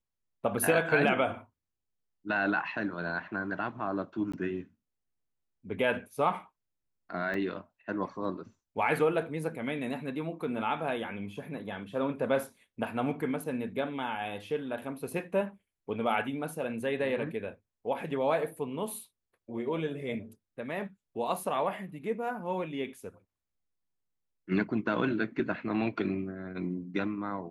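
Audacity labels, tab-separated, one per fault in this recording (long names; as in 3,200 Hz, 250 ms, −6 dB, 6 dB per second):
4.320000	4.330000	drop-out 15 ms
7.340000	7.340000	drop-out 2.6 ms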